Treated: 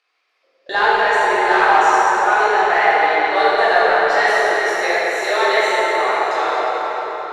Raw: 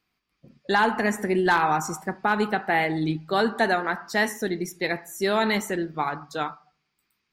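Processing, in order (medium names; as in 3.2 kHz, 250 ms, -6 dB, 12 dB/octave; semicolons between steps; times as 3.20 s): steep high-pass 440 Hz 36 dB/octave; gate -50 dBFS, range -46 dB; upward compressor, threshold -29 dBFS; waveshaping leveller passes 1; distance through air 76 m; echo whose repeats swap between lows and highs 217 ms, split 1.4 kHz, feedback 62%, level -13 dB; reverberation RT60 5.2 s, pre-delay 11 ms, DRR -11 dB; trim -3 dB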